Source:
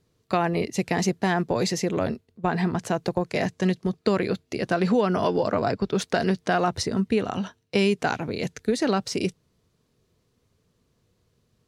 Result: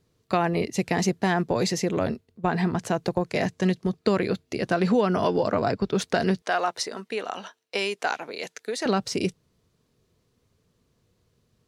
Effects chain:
0:06.42–0:08.86: high-pass filter 550 Hz 12 dB per octave

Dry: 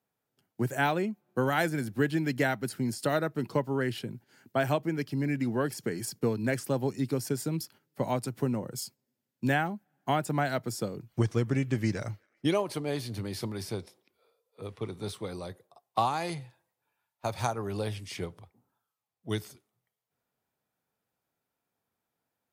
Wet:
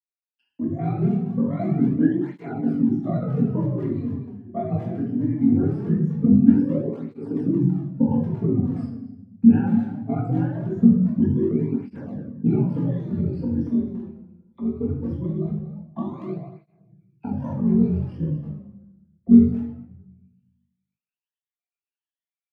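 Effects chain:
rippled gain that drifts along the octave scale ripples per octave 1.2, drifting +1.3 Hz, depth 22 dB
reverb reduction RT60 0.64 s
noise gate with hold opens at −49 dBFS
high-shelf EQ 4,600 Hz −9.5 dB
automatic gain control gain up to 10 dB
envelope filter 200–2,800 Hz, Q 4.6, down, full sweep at −36 dBFS
ring modulation 23 Hz
far-end echo of a speakerphone 230 ms, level −9 dB
rectangular room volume 260 cubic metres, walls mixed, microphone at 1.7 metres
through-zero flanger with one copy inverted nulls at 0.21 Hz, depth 7.3 ms
level +7 dB

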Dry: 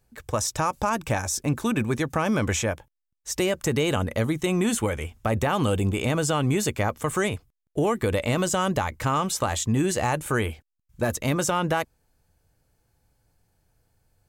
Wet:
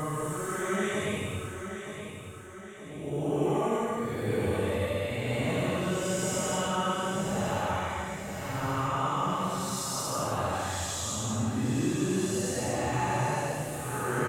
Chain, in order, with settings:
extreme stretch with random phases 4.3×, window 0.25 s, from 0:07.03
repeating echo 924 ms, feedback 47%, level −9 dB
level −6 dB

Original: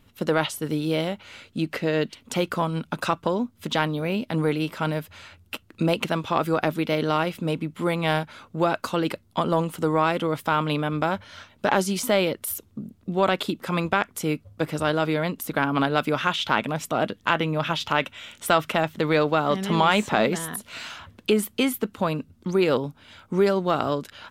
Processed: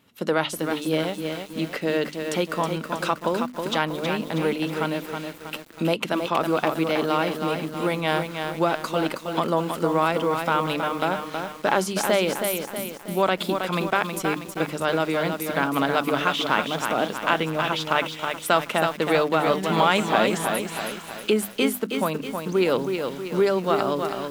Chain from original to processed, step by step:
high-pass filter 160 Hz 12 dB per octave
mains-hum notches 50/100/150/200/250/300 Hz
feedback echo at a low word length 320 ms, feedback 55%, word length 7 bits, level −5.5 dB

